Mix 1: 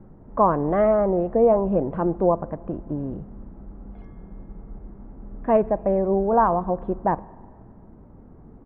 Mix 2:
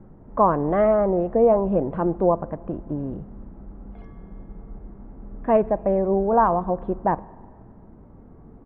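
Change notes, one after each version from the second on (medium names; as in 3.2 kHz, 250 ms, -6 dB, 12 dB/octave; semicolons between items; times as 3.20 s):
speech: remove distance through air 110 m; background: send on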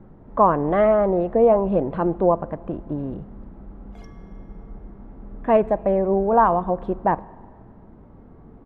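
master: remove distance through air 450 m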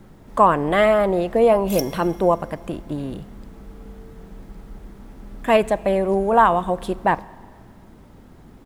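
background: entry -2.25 s; master: remove low-pass 1.1 kHz 12 dB/octave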